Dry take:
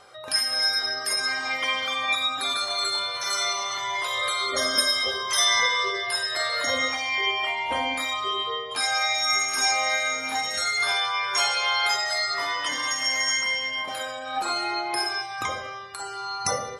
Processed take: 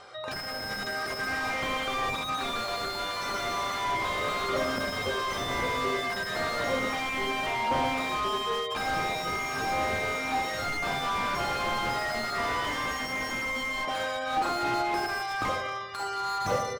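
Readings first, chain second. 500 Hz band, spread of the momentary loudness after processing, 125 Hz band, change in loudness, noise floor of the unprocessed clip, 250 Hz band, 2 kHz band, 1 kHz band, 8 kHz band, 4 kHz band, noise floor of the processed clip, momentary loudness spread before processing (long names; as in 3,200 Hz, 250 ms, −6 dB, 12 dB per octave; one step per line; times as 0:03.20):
+1.5 dB, 3 LU, +9.0 dB, −5.5 dB, −35 dBFS, +5.5 dB, −5.0 dB, −1.0 dB, −13.0 dB, −10.5 dB, −35 dBFS, 7 LU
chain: low-pass filter 6,300 Hz 12 dB per octave
repeating echo 118 ms, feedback 58%, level −18 dB
slew-rate limiting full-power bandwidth 45 Hz
level +2.5 dB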